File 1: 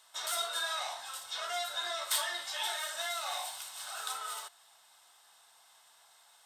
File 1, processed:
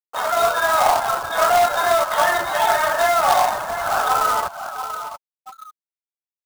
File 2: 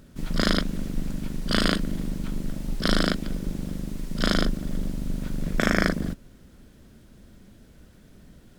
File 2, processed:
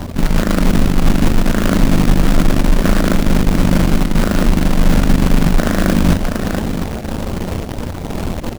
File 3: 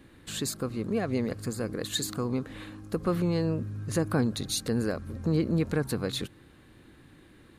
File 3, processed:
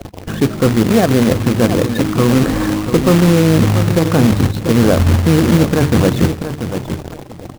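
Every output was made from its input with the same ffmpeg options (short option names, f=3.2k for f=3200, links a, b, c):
-filter_complex "[0:a]acrusher=bits=7:mix=0:aa=0.000001,equalizer=f=85:w=7.7:g=7,areverse,acompressor=threshold=-35dB:ratio=6,areverse,adynamicequalizer=threshold=0.00126:dfrequency=440:dqfactor=5.9:tfrequency=440:tqfactor=5.9:attack=5:release=100:ratio=0.375:range=3:mode=cutabove:tftype=bell,bandreject=f=50:t=h:w=6,bandreject=f=100:t=h:w=6,bandreject=f=150:t=h:w=6,bandreject=f=200:t=h:w=6,bandreject=f=250:t=h:w=6,bandreject=f=300:t=h:w=6,bandreject=f=350:t=h:w=6,bandreject=f=400:t=h:w=6,bandreject=f=450:t=h:w=6,asplit=2[a][b];[b]aecho=0:1:686|1372|2058:0.335|0.077|0.0177[c];[a][c]amix=inputs=2:normalize=0,agate=range=-33dB:threshold=-57dB:ratio=3:detection=peak,lowpass=1.1k,afftfilt=real='re*gte(hypot(re,im),0.002)':imag='im*gte(hypot(re,im),0.002)':win_size=1024:overlap=0.75,acrusher=bits=2:mode=log:mix=0:aa=0.000001,acompressor=mode=upward:threshold=-55dB:ratio=2.5,alimiter=level_in=28.5dB:limit=-1dB:release=50:level=0:latency=1,volume=-1dB"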